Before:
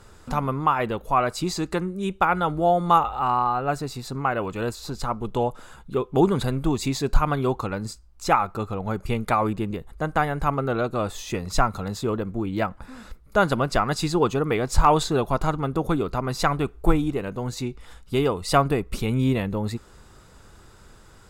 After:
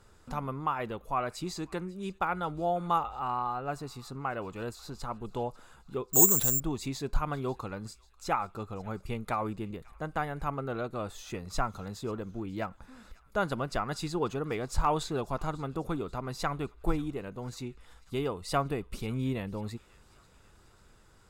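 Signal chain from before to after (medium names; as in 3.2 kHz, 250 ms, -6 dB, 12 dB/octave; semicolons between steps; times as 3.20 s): feedback echo behind a high-pass 541 ms, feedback 56%, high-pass 1.6 kHz, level -21 dB; 6.13–6.60 s: careless resampling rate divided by 6×, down none, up zero stuff; trim -10 dB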